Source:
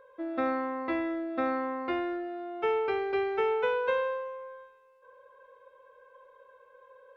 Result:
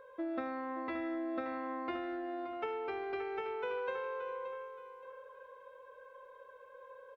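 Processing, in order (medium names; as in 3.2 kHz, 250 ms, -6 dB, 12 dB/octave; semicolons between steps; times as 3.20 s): compression, threshold -37 dBFS, peak gain reduction 12.5 dB; doubling 24 ms -14 dB; feedback delay 574 ms, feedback 31%, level -11 dB; trim +1 dB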